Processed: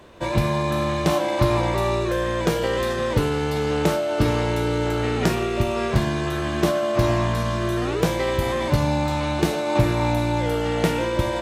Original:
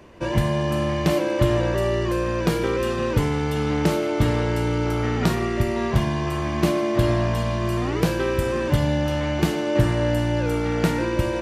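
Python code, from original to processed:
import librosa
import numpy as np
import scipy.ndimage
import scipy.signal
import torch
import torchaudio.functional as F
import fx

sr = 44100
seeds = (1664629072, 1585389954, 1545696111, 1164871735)

y = fx.formant_shift(x, sr, semitones=5)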